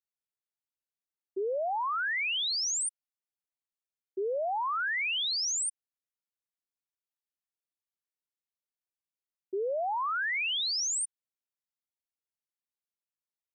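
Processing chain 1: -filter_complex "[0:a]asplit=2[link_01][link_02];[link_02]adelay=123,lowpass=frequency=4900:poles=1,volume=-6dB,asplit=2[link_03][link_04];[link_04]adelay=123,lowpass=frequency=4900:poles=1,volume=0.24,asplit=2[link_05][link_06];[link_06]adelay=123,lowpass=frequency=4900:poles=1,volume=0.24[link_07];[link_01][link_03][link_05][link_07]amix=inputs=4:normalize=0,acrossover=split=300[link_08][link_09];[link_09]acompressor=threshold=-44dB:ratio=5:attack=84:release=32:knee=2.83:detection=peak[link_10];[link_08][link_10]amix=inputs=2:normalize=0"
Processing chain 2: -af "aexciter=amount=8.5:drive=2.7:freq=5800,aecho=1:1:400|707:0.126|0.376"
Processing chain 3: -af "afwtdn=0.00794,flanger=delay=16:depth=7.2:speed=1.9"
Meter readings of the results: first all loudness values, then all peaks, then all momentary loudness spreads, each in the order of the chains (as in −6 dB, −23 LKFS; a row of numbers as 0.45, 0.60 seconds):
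−37.0, −20.5, −33.0 LKFS; −27.5, −10.0, −26.5 dBFS; 9, 18, 9 LU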